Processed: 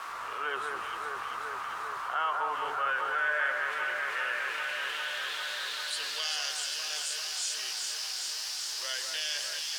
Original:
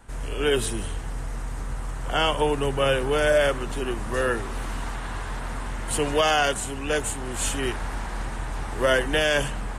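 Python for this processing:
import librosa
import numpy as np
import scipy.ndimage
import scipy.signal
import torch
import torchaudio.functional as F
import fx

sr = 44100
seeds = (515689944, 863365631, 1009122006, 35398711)

y = fx.highpass(x, sr, hz=110.0, slope=6)
y = fx.peak_eq(y, sr, hz=230.0, db=-8.0, octaves=1.8)
y = fx.quant_dither(y, sr, seeds[0], bits=6, dither='triangular')
y = fx.filter_sweep_bandpass(y, sr, from_hz=1200.0, to_hz=5000.0, start_s=2.49, end_s=6.4, q=4.5)
y = fx.echo_alternate(y, sr, ms=198, hz=2000.0, feedback_pct=86, wet_db=-5.5)
y = fx.env_flatten(y, sr, amount_pct=50)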